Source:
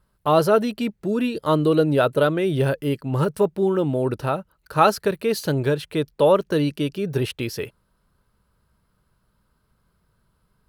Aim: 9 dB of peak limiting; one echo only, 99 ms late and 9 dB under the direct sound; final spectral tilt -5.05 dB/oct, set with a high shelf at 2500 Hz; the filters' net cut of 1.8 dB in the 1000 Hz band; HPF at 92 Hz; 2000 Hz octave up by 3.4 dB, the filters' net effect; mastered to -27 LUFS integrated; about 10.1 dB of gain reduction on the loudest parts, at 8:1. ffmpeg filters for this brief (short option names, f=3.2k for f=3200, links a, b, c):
-af "highpass=92,equalizer=f=1k:t=o:g=-5,equalizer=f=2k:t=o:g=5,highshelf=f=2.5k:g=4.5,acompressor=threshold=-23dB:ratio=8,alimiter=limit=-19.5dB:level=0:latency=1,aecho=1:1:99:0.355,volume=2.5dB"